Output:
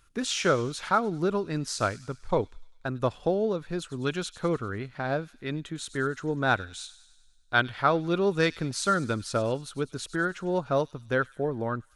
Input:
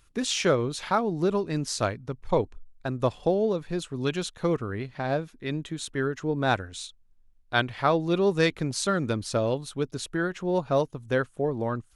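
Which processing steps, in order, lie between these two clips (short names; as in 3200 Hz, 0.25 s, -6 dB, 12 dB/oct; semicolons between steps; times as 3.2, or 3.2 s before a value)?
bell 1400 Hz +7 dB 0.36 oct; on a send: thin delay 99 ms, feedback 60%, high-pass 3300 Hz, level -13.5 dB; on the sum: gain -2 dB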